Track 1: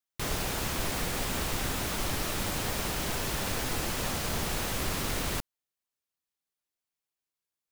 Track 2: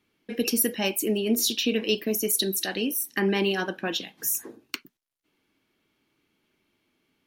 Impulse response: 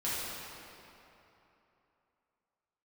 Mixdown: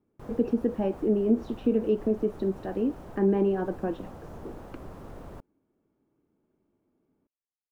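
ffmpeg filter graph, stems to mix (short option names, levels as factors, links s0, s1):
-filter_complex "[0:a]tiltshelf=f=700:g=-3.5,volume=0.473[s0];[1:a]lowpass=3100,volume=1.19,asplit=2[s1][s2];[s2]apad=whole_len=340280[s3];[s0][s3]sidechaincompress=threshold=0.0501:ratio=3:attack=22:release=111[s4];[s4][s1]amix=inputs=2:normalize=0,firequalizer=gain_entry='entry(520,0);entry(2100,-22);entry(4100,-28)':delay=0.05:min_phase=1"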